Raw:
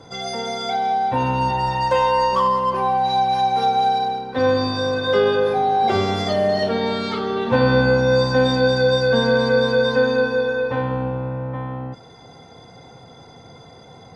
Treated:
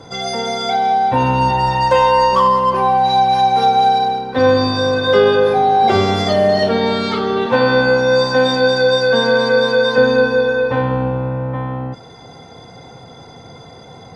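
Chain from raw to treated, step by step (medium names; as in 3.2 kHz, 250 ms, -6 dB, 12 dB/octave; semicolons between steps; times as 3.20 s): 7.46–9.98 s: high-pass 380 Hz 6 dB/octave; trim +5.5 dB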